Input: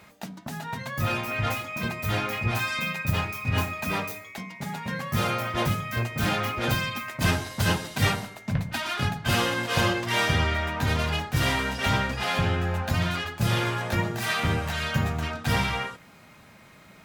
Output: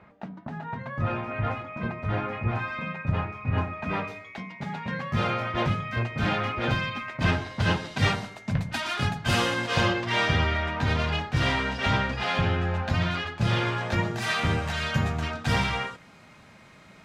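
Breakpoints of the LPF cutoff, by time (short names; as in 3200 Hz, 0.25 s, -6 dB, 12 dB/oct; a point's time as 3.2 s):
3.71 s 1600 Hz
4.22 s 3400 Hz
7.55 s 3400 Hz
8.63 s 9000 Hz
9.49 s 9000 Hz
9.93 s 4600 Hz
13.65 s 4600 Hz
14.23 s 7800 Hz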